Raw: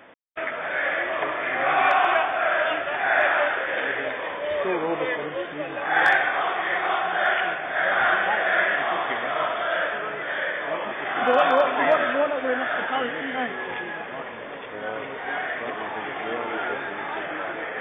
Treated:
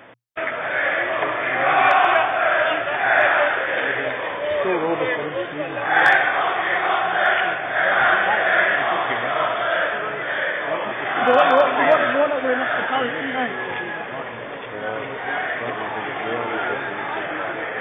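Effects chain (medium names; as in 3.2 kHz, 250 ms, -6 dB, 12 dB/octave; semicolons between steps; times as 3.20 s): peaking EQ 120 Hz +11 dB 0.24 oct; trim +4 dB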